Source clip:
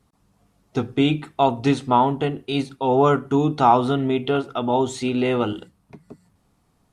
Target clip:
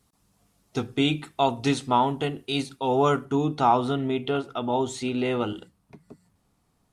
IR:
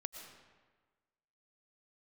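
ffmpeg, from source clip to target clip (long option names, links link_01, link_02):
-af "asetnsamples=nb_out_samples=441:pad=0,asendcmd='3.25 highshelf g 3',highshelf=frequency=3100:gain=10.5,volume=-5dB"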